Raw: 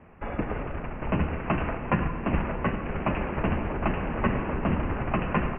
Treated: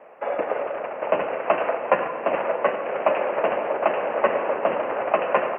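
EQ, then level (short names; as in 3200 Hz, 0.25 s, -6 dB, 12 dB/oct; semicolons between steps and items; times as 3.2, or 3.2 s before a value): resonant high-pass 560 Hz, resonance Q 3.6; +3.5 dB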